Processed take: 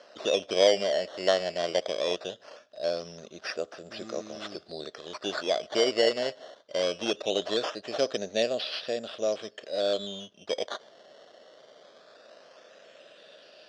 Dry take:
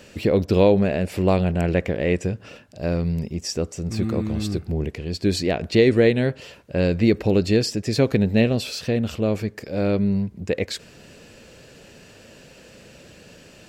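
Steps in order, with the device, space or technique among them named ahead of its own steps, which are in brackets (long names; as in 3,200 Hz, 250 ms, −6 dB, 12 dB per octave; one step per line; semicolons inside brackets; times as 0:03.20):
circuit-bent sampling toy (sample-and-hold swept by an LFO 12×, swing 100% 0.2 Hz; loudspeaker in its box 570–5,800 Hz, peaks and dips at 620 Hz +10 dB, 900 Hz −8 dB, 2,200 Hz −8 dB, 3,500 Hz +6 dB, 5,200 Hz +5 dB)
level −4 dB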